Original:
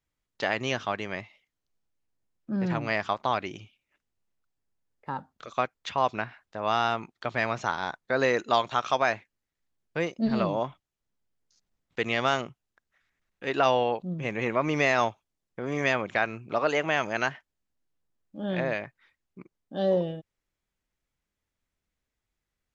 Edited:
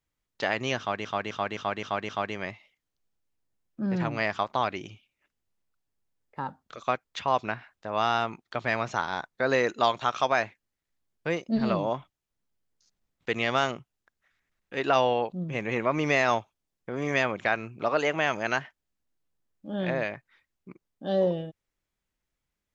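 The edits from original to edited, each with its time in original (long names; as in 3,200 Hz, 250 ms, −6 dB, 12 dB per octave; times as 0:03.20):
0:00.79–0:01.05: repeat, 6 plays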